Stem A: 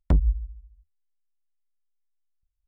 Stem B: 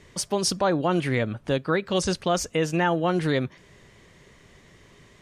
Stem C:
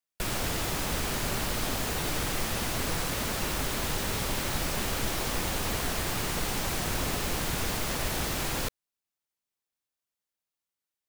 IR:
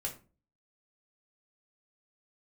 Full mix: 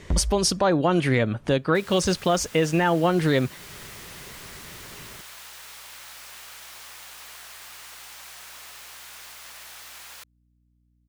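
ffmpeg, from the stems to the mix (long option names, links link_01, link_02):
-filter_complex "[0:a]volume=-4.5dB[link_01];[1:a]acontrast=59,volume=0.5dB[link_02];[2:a]highpass=1100,aeval=exprs='val(0)+0.00178*(sin(2*PI*60*n/s)+sin(2*PI*2*60*n/s)/2+sin(2*PI*3*60*n/s)/3+sin(2*PI*4*60*n/s)/4+sin(2*PI*5*60*n/s)/5)':channel_layout=same,adelay=1550,volume=-9dB[link_03];[link_01][link_02][link_03]amix=inputs=3:normalize=0,alimiter=limit=-11.5dB:level=0:latency=1:release=444"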